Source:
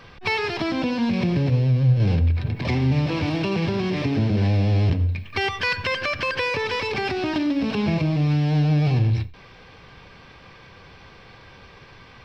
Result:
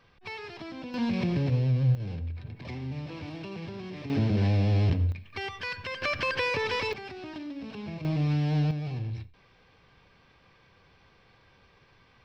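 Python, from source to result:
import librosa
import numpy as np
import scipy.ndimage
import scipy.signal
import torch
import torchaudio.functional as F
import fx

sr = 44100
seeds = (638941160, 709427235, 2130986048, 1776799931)

y = fx.gain(x, sr, db=fx.steps((0.0, -16.0), (0.94, -6.0), (1.95, -15.5), (4.1, -4.5), (5.12, -11.5), (6.02, -4.0), (6.93, -16.0), (8.05, -6.0), (8.71, -14.0)))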